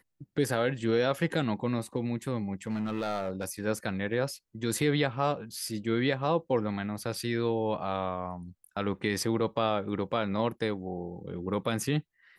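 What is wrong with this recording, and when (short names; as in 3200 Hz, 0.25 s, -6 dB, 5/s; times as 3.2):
2.67–3.48 clipped -26.5 dBFS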